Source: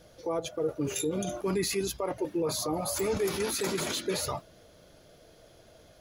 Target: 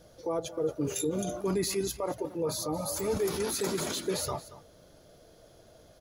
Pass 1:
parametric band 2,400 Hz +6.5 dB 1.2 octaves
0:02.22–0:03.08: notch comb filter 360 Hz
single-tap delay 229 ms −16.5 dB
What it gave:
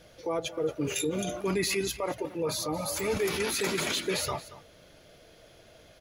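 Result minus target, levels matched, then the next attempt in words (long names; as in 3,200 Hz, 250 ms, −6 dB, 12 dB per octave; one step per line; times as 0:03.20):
2,000 Hz band +8.0 dB
parametric band 2,400 Hz −5.5 dB 1.2 octaves
0:02.22–0:03.08: notch comb filter 360 Hz
single-tap delay 229 ms −16.5 dB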